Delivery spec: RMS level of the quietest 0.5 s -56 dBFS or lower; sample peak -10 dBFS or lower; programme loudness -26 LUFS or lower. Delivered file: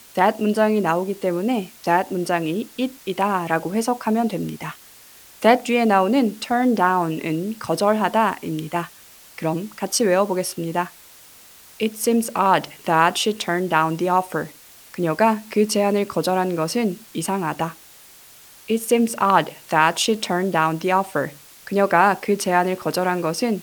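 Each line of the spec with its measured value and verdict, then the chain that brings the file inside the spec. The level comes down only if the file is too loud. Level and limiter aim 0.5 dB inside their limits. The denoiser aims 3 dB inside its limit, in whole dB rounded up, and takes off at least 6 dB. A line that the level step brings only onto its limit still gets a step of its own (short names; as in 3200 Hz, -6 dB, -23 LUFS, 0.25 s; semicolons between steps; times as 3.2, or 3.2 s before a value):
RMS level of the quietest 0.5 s -47 dBFS: fail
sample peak -2.0 dBFS: fail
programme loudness -21.0 LUFS: fail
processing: denoiser 7 dB, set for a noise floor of -47 dBFS; gain -5.5 dB; limiter -10.5 dBFS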